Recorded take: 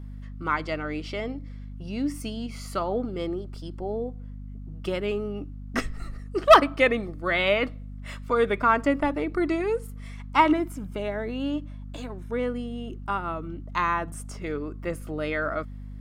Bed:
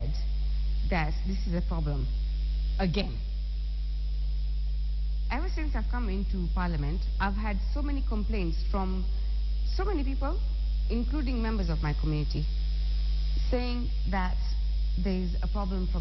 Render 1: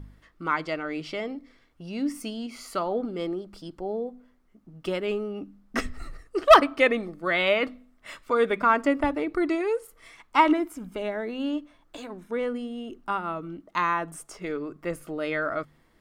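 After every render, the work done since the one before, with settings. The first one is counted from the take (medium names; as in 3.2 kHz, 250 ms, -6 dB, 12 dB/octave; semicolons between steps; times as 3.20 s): de-hum 50 Hz, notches 5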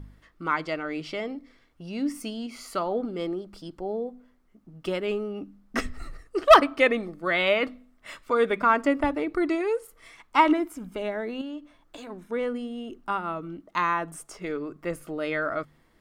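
11.41–12.07 s: compression 2:1, threshold -39 dBFS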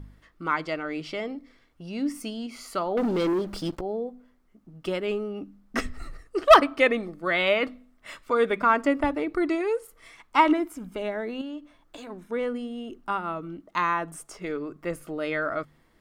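2.97–3.81 s: waveshaping leveller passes 3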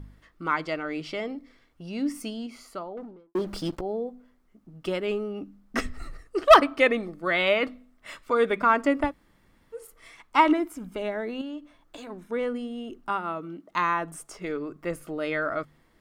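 2.20–3.35 s: studio fade out; 9.09–9.77 s: room tone, crossfade 0.10 s; 13.09–13.70 s: high-pass 160 Hz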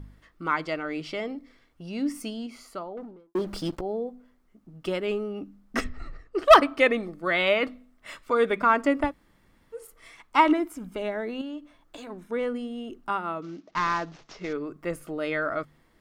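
5.84–6.39 s: distance through air 140 m; 13.42–14.53 s: CVSD coder 32 kbps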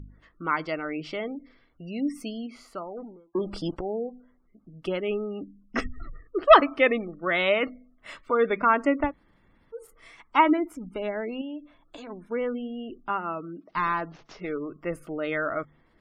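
spectral gate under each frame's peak -30 dB strong; treble shelf 8.8 kHz -11 dB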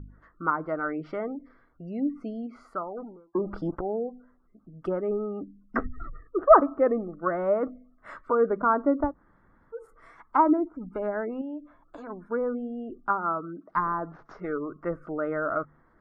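low-pass that closes with the level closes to 790 Hz, closed at -23.5 dBFS; resonant high shelf 2 kHz -11.5 dB, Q 3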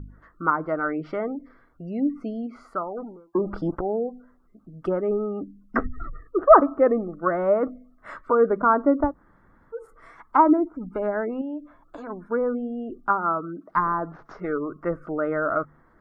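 trim +4 dB; peak limiter -3 dBFS, peak gain reduction 2 dB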